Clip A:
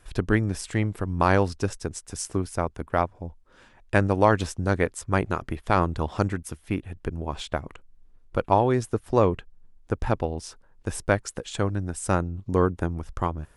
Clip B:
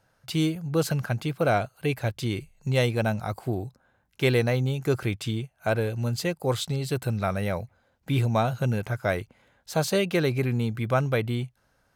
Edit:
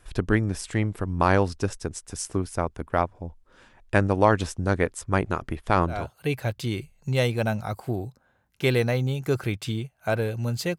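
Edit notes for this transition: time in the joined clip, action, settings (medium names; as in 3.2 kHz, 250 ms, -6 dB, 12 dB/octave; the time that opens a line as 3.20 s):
clip A
6.00 s: go over to clip B from 1.59 s, crossfade 0.28 s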